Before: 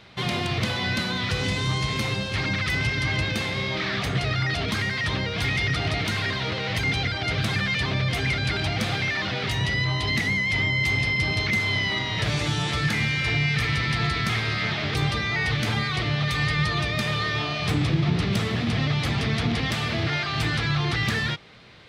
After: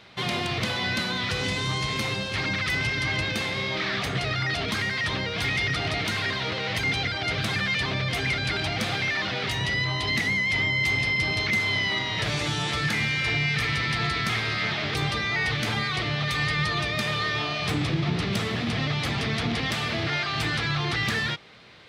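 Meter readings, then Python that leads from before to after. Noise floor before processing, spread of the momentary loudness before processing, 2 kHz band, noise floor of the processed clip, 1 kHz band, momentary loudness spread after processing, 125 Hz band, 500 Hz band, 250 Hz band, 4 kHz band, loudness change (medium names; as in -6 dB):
-29 dBFS, 3 LU, 0.0 dB, -30 dBFS, 0.0 dB, 4 LU, -4.5 dB, -1.0 dB, -3.0 dB, 0.0 dB, -1.0 dB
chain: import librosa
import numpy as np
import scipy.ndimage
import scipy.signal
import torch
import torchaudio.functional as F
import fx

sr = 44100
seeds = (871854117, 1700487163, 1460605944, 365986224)

y = fx.low_shelf(x, sr, hz=170.0, db=-7.0)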